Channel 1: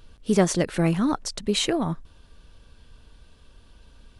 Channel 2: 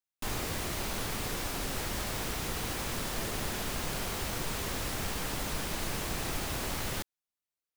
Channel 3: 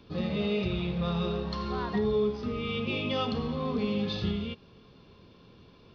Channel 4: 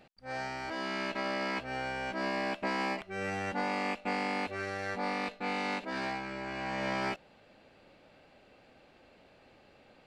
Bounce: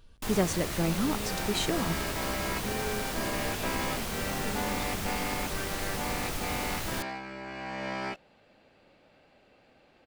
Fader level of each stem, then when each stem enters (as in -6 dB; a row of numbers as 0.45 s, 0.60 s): -7.0 dB, 0.0 dB, -10.5 dB, -1.5 dB; 0.00 s, 0.00 s, 0.70 s, 1.00 s